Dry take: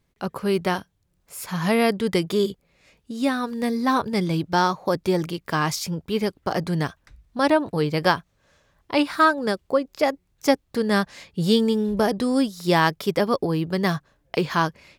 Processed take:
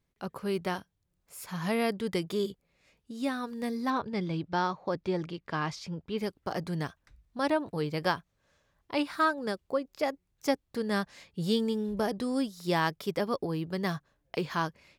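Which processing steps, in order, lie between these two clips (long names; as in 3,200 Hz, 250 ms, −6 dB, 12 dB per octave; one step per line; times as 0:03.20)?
0:03.90–0:06.18: low-pass filter 4,300 Hz 12 dB per octave
level −9 dB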